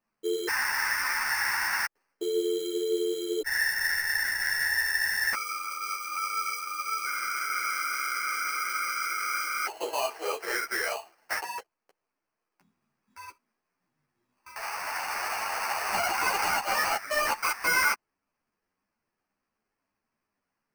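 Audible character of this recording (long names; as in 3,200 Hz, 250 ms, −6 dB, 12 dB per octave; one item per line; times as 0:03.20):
aliases and images of a low sample rate 3,600 Hz, jitter 0%
a shimmering, thickened sound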